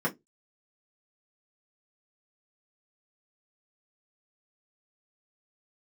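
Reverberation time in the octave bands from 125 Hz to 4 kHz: 0.20, 0.20, 0.20, 0.15, 0.10, 0.10 seconds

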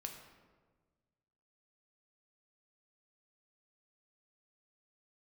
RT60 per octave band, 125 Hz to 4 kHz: 2.0, 1.7, 1.6, 1.3, 1.1, 0.80 seconds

